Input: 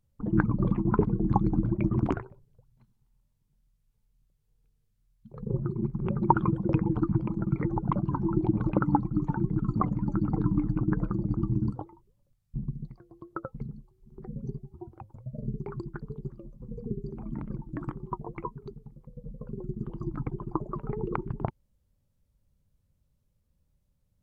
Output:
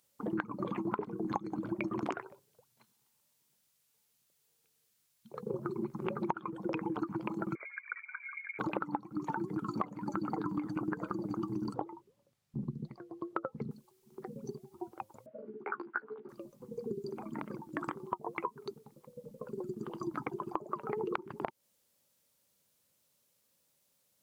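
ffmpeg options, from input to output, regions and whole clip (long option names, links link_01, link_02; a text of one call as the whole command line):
ffmpeg -i in.wav -filter_complex "[0:a]asettb=1/sr,asplit=3[link_01][link_02][link_03];[link_01]atrim=end=7.554[link_04];[link_02]atrim=start=7.55:end=8.59,asetpts=PTS-STARTPTS,afade=type=in:duration=0.004:curve=qsin,afade=type=out:start_time=1.036:duration=0.004:curve=qsin,aderivative,lowpass=frequency=2100:width_type=q:width=0.5098,lowpass=frequency=2100:width_type=q:width=0.6013,lowpass=frequency=2100:width_type=q:width=0.9,lowpass=frequency=2100:width_type=q:width=2.563,afreqshift=-2500[link_05];[link_03]atrim=start=8.586[link_06];[link_04][link_05]acrossfade=duration=0.004:curve1=hsin:curve2=qsin[link_07];[link_07][link_06]acrossfade=duration=0.004:curve1=qsin:curve2=hsin,asettb=1/sr,asplit=3[link_08][link_09][link_10];[link_08]atrim=end=11.744[link_11];[link_09]atrim=start=11.74:end=13.71,asetpts=PTS-STARTPTS,afade=type=in:duration=0.004:curve=qsin,afade=type=out:start_time=1.966:duration=0.004:curve=qsin,lowpass=frequency=2400:poles=1,lowshelf=frequency=450:gain=9.5[link_12];[link_10]atrim=start=13.706[link_13];[link_11][link_12]acrossfade=duration=0.004:curve1=hsin:curve2=qsin[link_14];[link_14][link_13]acrossfade=duration=0.004:curve1=qsin:curve2=hsin,asettb=1/sr,asplit=3[link_15][link_16][link_17];[link_15]atrim=end=15.264[link_18];[link_16]atrim=start=15.26:end=16.29,asetpts=PTS-STARTPTS,afade=type=in:duration=0.004:curve=qsin,afade=type=out:start_time=1.026:duration=0.004:curve=qsin,highpass=frequency=290:width=0.5412,highpass=frequency=290:width=1.3066,equalizer=frequency=370:width_type=q:width=4:gain=-8,equalizer=frequency=560:width_type=q:width=4:gain=-5,equalizer=frequency=1000:width_type=q:width=4:gain=-4,equalizer=frequency=1500:width_type=q:width=4:gain=9,lowpass=frequency=2300:width=0.5412,lowpass=frequency=2300:width=1.3066,asplit=2[link_19][link_20];[link_20]adelay=14,volume=-2.5dB[link_21];[link_19][link_21]amix=inputs=2:normalize=0,atrim=end_sample=45423[link_22];[link_17]atrim=start=16.286[link_23];[link_18][link_22]acrossfade=duration=0.004:curve1=hsin:curve2=qsin[link_24];[link_24][link_23]acrossfade=duration=0.004:curve1=qsin:curve2=hsin,highpass=400,highshelf=frequency=2300:gain=10.5,acompressor=threshold=-36dB:ratio=16,volume=5dB" out.wav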